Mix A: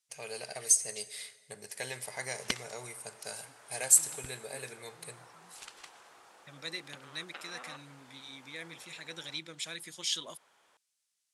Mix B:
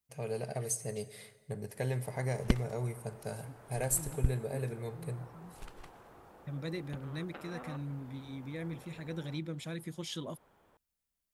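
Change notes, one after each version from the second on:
master: remove frequency weighting ITU-R 468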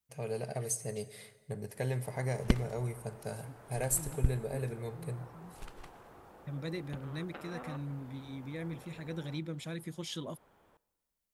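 background: send on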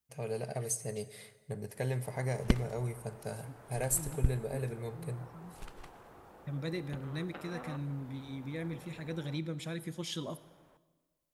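second voice: send on

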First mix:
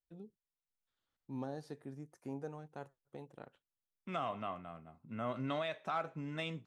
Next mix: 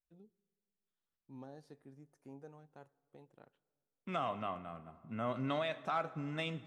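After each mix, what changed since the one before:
first voice -9.5 dB; reverb: on, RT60 2.1 s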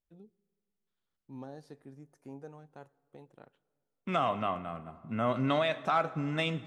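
first voice +6.0 dB; second voice +7.5 dB

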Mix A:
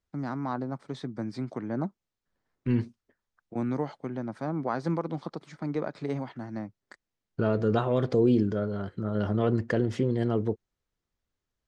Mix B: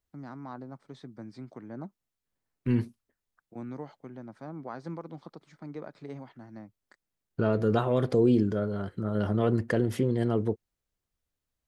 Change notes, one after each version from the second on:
first voice -9.5 dB; second voice: remove low-pass 7.3 kHz 24 dB/octave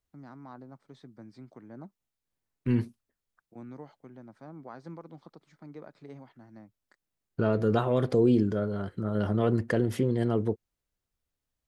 first voice -5.0 dB

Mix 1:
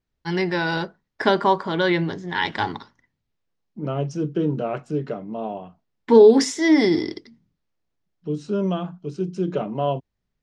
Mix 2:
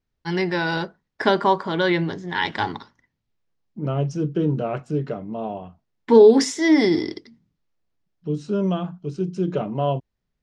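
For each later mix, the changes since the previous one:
second voice: remove high-pass 150 Hz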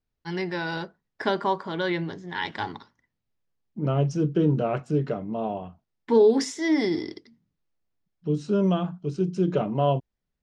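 first voice -6.5 dB

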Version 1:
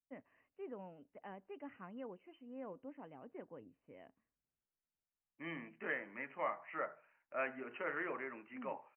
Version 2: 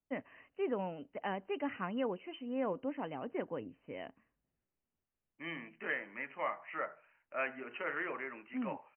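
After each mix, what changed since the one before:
first voice +11.5 dB; master: remove distance through air 390 m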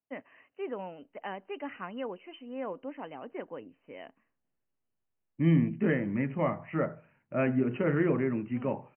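first voice: add high-pass 240 Hz 6 dB/octave; second voice: remove high-pass 970 Hz 12 dB/octave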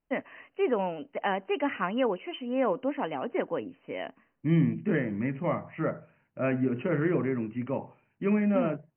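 first voice +10.0 dB; second voice: entry -0.95 s

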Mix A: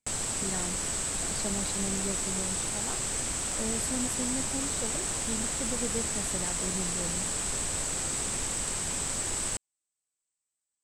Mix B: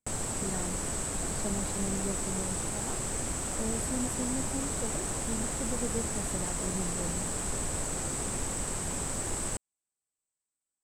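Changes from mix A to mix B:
background +3.0 dB; master: add peaking EQ 4.1 kHz -10 dB 2.7 oct

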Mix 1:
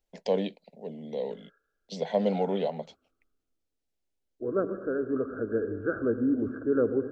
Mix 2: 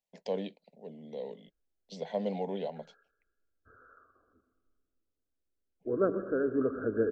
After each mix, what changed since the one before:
first voice -7.0 dB; second voice: entry +1.45 s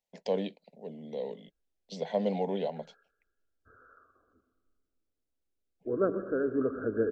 first voice +3.5 dB

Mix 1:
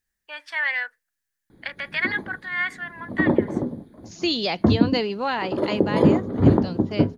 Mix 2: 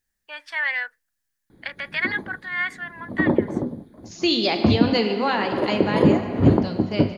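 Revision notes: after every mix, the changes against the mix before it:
reverb: on, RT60 2.9 s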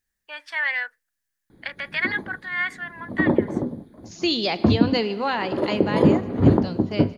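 second voice: send -10.0 dB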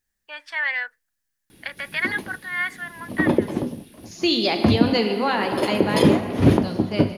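second voice: send +10.5 dB; background: remove boxcar filter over 16 samples

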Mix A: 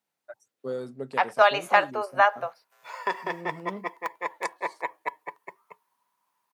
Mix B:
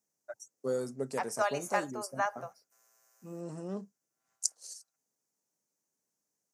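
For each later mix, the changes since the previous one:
second voice -11.5 dB; background: muted; master: add resonant high shelf 4.7 kHz +10 dB, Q 3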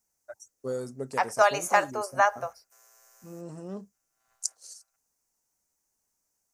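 second voice +9.5 dB; master: remove high-pass 130 Hz 24 dB/octave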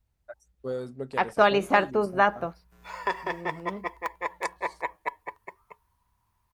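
second voice: remove steep high-pass 530 Hz 36 dB/octave; background: unmuted; master: add resonant high shelf 4.7 kHz -10 dB, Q 3

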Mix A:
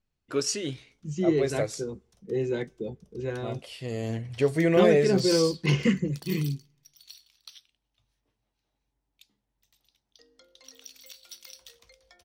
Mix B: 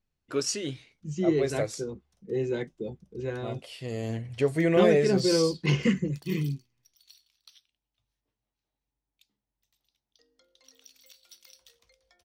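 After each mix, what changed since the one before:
background -7.0 dB; reverb: off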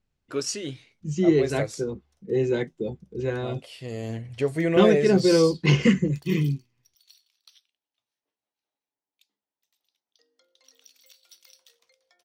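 second voice +5.5 dB; background: add high-pass 350 Hz 12 dB/octave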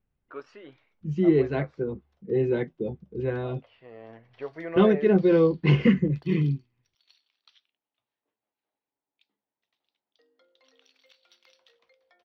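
first voice: add band-pass filter 1.1 kHz, Q 1.4; background +5.0 dB; master: add distance through air 340 m

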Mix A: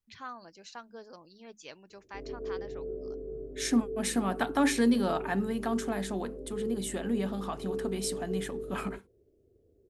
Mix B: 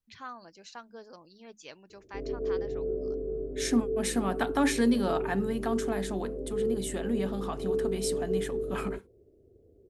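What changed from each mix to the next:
background +6.0 dB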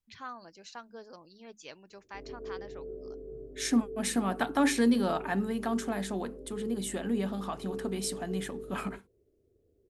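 background -10.0 dB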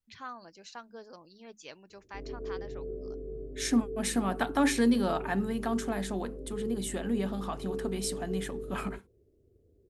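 background: add bass shelf 270 Hz +8.5 dB

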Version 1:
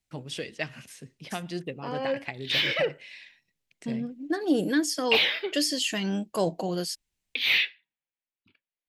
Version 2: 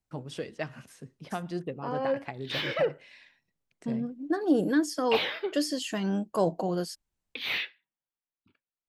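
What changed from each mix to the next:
master: add resonant high shelf 1.7 kHz -7 dB, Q 1.5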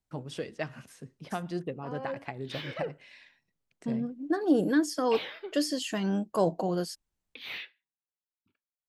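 background -8.5 dB

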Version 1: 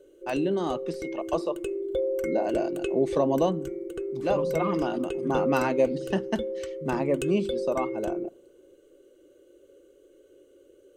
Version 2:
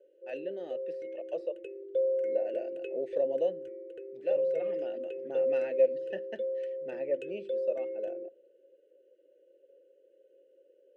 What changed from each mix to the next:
master: add vowel filter e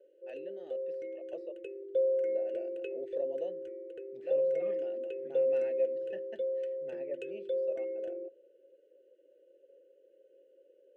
first voice -8.0 dB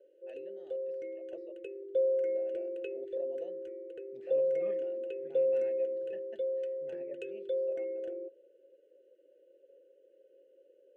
first voice -6.0 dB

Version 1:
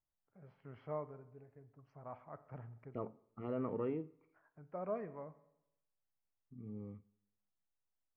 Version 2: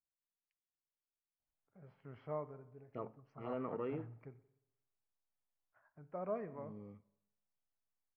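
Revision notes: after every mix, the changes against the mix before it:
first voice: entry +1.40 s; second voice: add tilt EQ +2 dB/octave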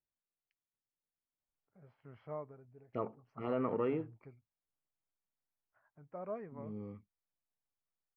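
second voice +7.5 dB; reverb: off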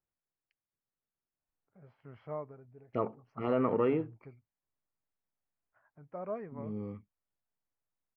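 first voice +3.5 dB; second voice +5.5 dB

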